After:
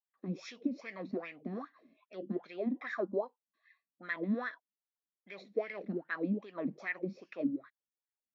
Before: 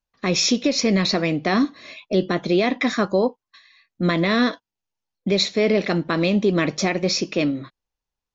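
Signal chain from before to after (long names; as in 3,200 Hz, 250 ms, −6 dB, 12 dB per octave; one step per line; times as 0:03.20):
LFO wah 2.5 Hz 210–1,900 Hz, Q 6.5
level −4.5 dB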